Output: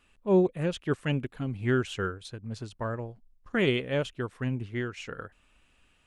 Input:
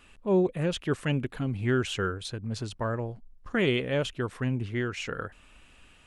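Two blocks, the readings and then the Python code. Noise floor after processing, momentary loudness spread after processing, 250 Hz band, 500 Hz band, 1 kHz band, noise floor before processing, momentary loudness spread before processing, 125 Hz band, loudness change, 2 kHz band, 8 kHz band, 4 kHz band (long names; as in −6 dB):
−66 dBFS, 15 LU, −0.5 dB, 0.0 dB, −1.5 dB, −57 dBFS, 10 LU, −1.5 dB, −0.5 dB, −1.0 dB, −6.0 dB, −3.0 dB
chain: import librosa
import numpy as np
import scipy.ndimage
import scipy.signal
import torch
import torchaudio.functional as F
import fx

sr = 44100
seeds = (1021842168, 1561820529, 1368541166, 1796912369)

y = fx.upward_expand(x, sr, threshold_db=-42.0, expansion=1.5)
y = y * 10.0 ** (2.0 / 20.0)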